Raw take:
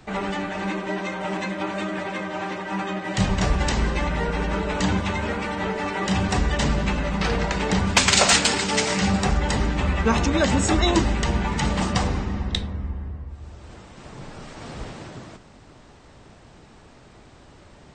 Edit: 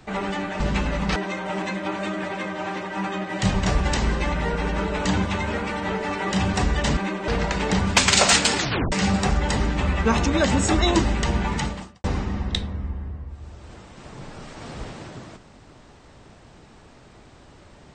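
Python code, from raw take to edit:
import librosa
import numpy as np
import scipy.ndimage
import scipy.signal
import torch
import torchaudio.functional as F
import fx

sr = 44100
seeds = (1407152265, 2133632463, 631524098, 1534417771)

y = fx.edit(x, sr, fx.swap(start_s=0.6, length_s=0.31, other_s=6.72, other_length_s=0.56),
    fx.tape_stop(start_s=8.57, length_s=0.35),
    fx.fade_out_span(start_s=11.56, length_s=0.48, curve='qua'), tone=tone)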